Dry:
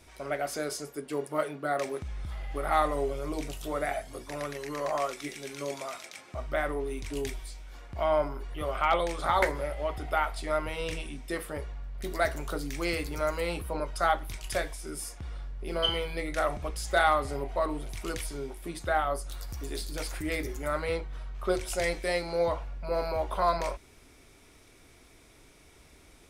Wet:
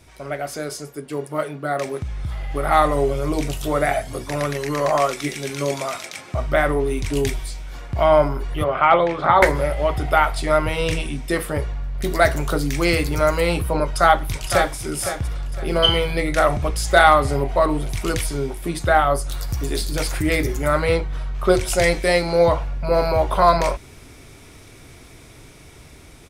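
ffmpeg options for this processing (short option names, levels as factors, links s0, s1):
-filter_complex "[0:a]asplit=3[s0][s1][s2];[s0]afade=t=out:st=8.63:d=0.02[s3];[s1]highpass=130,lowpass=2400,afade=t=in:st=8.63:d=0.02,afade=t=out:st=9.41:d=0.02[s4];[s2]afade=t=in:st=9.41:d=0.02[s5];[s3][s4][s5]amix=inputs=3:normalize=0,asplit=2[s6][s7];[s7]afade=t=in:st=13.84:d=0.01,afade=t=out:st=14.76:d=0.01,aecho=0:1:510|1020|1530|2040:0.375837|0.112751|0.0338254|0.0101476[s8];[s6][s8]amix=inputs=2:normalize=0,equalizer=f=120:w=1.3:g=8,dynaudnorm=f=560:g=9:m=2.37,volume=1.58"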